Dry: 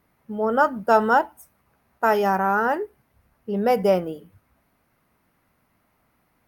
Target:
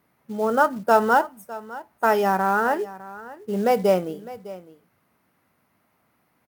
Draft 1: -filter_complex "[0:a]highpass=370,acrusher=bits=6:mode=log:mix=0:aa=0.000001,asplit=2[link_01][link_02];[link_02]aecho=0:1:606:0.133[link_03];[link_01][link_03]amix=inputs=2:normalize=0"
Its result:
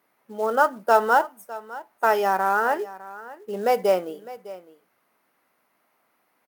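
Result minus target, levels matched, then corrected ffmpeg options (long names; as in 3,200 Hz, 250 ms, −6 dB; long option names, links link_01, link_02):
125 Hz band −10.5 dB
-filter_complex "[0:a]highpass=110,acrusher=bits=6:mode=log:mix=0:aa=0.000001,asplit=2[link_01][link_02];[link_02]aecho=0:1:606:0.133[link_03];[link_01][link_03]amix=inputs=2:normalize=0"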